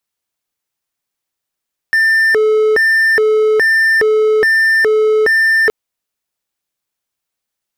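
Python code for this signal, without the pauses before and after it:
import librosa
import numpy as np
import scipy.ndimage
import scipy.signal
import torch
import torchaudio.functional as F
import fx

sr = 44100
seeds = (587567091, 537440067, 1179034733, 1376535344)

y = fx.siren(sr, length_s=3.77, kind='hi-lo', low_hz=432.0, high_hz=1790.0, per_s=1.2, wave='triangle', level_db=-6.5)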